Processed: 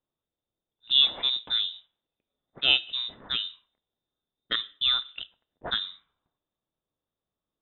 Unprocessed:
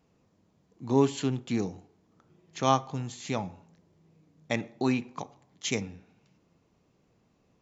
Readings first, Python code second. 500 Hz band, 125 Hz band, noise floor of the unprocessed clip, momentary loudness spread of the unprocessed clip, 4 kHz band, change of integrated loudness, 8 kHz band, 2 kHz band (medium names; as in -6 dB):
-16.0 dB, -21.0 dB, -69 dBFS, 17 LU, +18.5 dB, +5.5 dB, no reading, +6.0 dB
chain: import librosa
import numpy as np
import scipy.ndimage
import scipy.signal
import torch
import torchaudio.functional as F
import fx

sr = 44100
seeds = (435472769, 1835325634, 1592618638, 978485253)

y = fx.freq_invert(x, sr, carrier_hz=3800)
y = fx.env_lowpass(y, sr, base_hz=490.0, full_db=-26.0)
y = y * 10.0 ** (1.5 / 20.0)